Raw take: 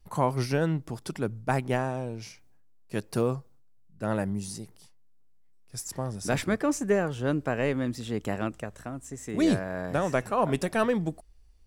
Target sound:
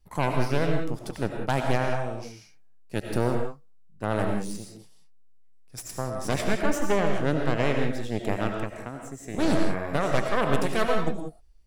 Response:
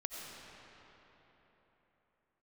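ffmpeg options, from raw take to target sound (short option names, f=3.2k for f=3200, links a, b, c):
-filter_complex "[0:a]aeval=exprs='0.316*(cos(1*acos(clip(val(0)/0.316,-1,1)))-cos(1*PI/2))+0.0891*(cos(6*acos(clip(val(0)/0.316,-1,1)))-cos(6*PI/2))':c=same[a];[1:a]atrim=start_sample=2205,afade=t=out:st=0.25:d=0.01,atrim=end_sample=11466[b];[a][b]afir=irnorm=-1:irlink=0"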